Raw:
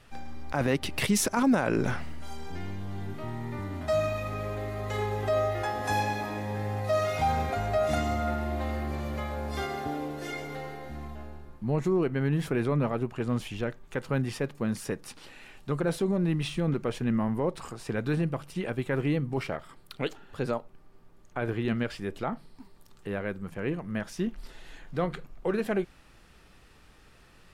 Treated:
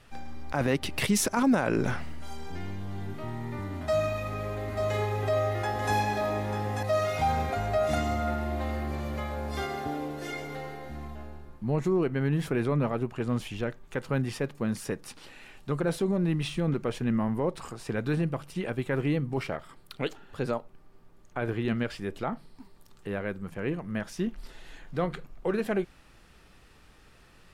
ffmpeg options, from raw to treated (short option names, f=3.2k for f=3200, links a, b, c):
-filter_complex "[0:a]asettb=1/sr,asplit=3[a][b][c];[a]atrim=end=3.794[d];[b]atrim=start=3.79:end=6.83,asetpts=PTS-STARTPTS,afade=t=in:d=0.004:c=qsin,afade=t=out:st=3.036:d=0.004:c=qsin,aecho=1:1:891:0.501,atrim=end_sample=134064[e];[c]atrim=start=6.826[f];[d][e]acrossfade=d=0.004:c1=hsin:c2=qsin[g];[g][f]acrossfade=d=0.004:c1=qsin:c2=hsin"